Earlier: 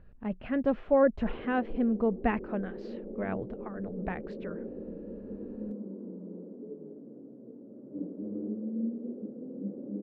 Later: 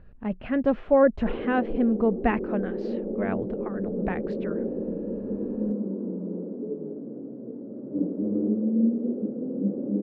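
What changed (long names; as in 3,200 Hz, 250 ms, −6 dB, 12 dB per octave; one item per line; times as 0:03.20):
speech +4.5 dB
background +10.5 dB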